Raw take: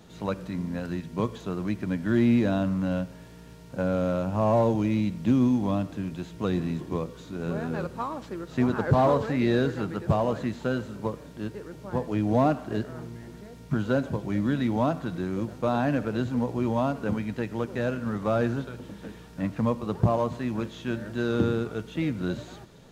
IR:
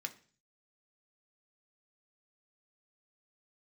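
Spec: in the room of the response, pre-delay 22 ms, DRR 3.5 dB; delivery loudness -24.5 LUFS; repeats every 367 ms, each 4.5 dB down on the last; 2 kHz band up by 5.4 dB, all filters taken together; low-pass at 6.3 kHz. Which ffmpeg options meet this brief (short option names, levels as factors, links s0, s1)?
-filter_complex "[0:a]lowpass=6300,equalizer=f=2000:t=o:g=7.5,aecho=1:1:367|734|1101|1468|1835|2202|2569|2936|3303:0.596|0.357|0.214|0.129|0.0772|0.0463|0.0278|0.0167|0.01,asplit=2[s0][s1];[1:a]atrim=start_sample=2205,adelay=22[s2];[s1][s2]afir=irnorm=-1:irlink=0,volume=0.75[s3];[s0][s3]amix=inputs=2:normalize=0"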